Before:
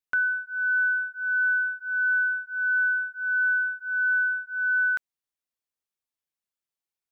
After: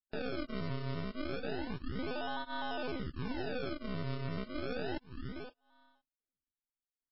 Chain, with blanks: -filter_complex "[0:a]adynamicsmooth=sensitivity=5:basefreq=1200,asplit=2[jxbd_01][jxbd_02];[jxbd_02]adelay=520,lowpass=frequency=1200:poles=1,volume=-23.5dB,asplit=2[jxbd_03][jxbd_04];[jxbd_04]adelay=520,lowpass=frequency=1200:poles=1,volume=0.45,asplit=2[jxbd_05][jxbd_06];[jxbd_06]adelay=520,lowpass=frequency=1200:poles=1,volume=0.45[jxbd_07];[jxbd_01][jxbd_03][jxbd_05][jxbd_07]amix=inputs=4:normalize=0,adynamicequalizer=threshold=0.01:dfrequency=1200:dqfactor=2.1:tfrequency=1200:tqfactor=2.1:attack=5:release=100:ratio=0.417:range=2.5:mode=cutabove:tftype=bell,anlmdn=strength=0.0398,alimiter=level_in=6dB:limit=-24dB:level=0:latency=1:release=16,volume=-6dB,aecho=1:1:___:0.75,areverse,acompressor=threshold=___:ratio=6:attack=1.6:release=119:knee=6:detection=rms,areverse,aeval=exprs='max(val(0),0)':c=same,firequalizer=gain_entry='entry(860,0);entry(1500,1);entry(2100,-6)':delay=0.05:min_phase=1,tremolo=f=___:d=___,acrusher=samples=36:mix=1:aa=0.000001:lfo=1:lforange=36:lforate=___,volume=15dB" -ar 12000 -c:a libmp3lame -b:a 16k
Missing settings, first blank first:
6.5, -44dB, 260, 0.857, 0.3